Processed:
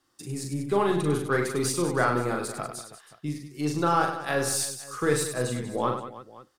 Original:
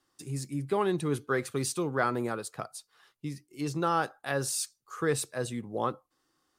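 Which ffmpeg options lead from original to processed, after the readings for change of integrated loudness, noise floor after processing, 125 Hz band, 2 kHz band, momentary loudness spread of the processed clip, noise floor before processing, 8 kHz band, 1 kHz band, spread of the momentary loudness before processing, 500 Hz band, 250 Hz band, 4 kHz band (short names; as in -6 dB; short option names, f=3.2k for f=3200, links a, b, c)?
+4.5 dB, -62 dBFS, +4.5 dB, +5.0 dB, 13 LU, -77 dBFS, +4.5 dB, +5.0 dB, 12 LU, +4.5 dB, +4.5 dB, +5.0 dB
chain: -af "aeval=exprs='0.224*(cos(1*acos(clip(val(0)/0.224,-1,1)))-cos(1*PI/2))+0.00447*(cos(8*acos(clip(val(0)/0.224,-1,1)))-cos(8*PI/2))':c=same,aecho=1:1:40|100|190|325|527.5:0.631|0.398|0.251|0.158|0.1,volume=2.5dB"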